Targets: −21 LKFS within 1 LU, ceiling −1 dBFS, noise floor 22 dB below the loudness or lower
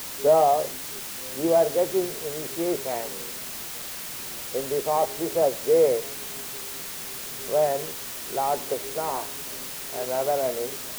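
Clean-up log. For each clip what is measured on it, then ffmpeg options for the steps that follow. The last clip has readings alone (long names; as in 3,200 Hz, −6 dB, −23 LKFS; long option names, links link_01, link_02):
background noise floor −36 dBFS; target noise floor −48 dBFS; integrated loudness −26.0 LKFS; sample peak −8.5 dBFS; target loudness −21.0 LKFS
→ -af "afftdn=noise_reduction=12:noise_floor=-36"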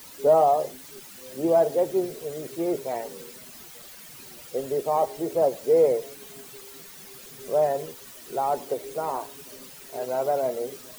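background noise floor −45 dBFS; target noise floor −48 dBFS
→ -af "afftdn=noise_reduction=6:noise_floor=-45"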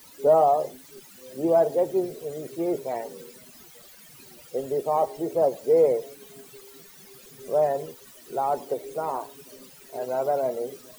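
background noise floor −50 dBFS; integrated loudness −25.5 LKFS; sample peak −9.5 dBFS; target loudness −21.0 LKFS
→ -af "volume=4.5dB"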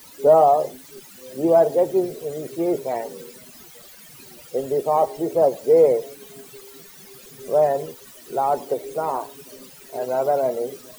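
integrated loudness −21.0 LKFS; sample peak −5.0 dBFS; background noise floor −45 dBFS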